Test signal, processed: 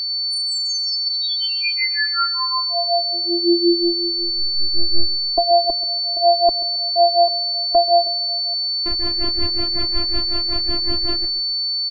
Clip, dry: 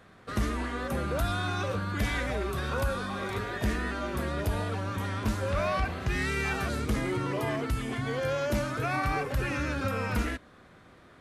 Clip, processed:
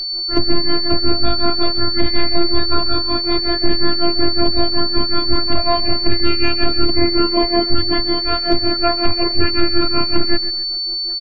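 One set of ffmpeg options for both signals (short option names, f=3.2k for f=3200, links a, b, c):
-af "aemphasis=mode=reproduction:type=riaa,asoftclip=type=hard:threshold=-14dB,highpass=43,lowshelf=f=150:g=-3,afftfilt=real='hypot(re,im)*cos(PI*b)':imag='0':win_size=512:overlap=0.75,tremolo=f=5.4:d=0.92,afftdn=nr=13:nf=-50,aeval=exprs='val(0)+0.0112*sin(2*PI*4500*n/s)':c=same,aecho=1:1:134|268|402:0.168|0.0638|0.0242,alimiter=level_in=19dB:limit=-1dB:release=50:level=0:latency=1,volume=-1dB"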